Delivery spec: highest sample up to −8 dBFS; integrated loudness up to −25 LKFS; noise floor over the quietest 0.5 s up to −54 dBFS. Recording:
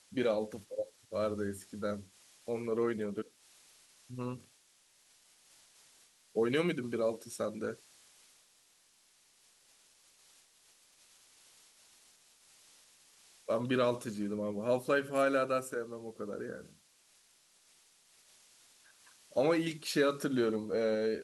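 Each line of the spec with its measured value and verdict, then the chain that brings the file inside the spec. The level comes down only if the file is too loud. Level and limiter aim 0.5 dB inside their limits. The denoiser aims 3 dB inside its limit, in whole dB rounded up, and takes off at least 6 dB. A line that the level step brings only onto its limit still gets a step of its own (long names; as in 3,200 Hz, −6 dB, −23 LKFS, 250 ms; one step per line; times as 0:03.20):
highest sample −16.5 dBFS: in spec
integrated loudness −34.5 LKFS: in spec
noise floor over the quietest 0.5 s −68 dBFS: in spec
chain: no processing needed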